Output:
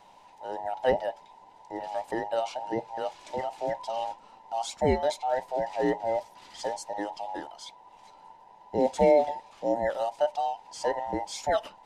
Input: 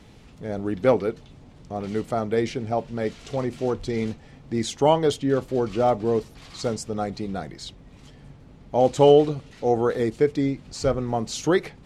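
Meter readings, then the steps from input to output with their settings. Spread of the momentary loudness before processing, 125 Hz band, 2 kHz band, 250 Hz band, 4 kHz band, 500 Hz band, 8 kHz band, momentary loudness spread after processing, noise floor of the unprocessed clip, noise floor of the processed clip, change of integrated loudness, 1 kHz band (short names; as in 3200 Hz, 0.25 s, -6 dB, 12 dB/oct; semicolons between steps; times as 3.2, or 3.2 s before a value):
13 LU, -13.5 dB, -3.0 dB, -10.0 dB, -6.5 dB, -6.0 dB, -6.0 dB, 12 LU, -49 dBFS, -55 dBFS, -6.0 dB, -1.5 dB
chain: band inversion scrambler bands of 1000 Hz; gain -6 dB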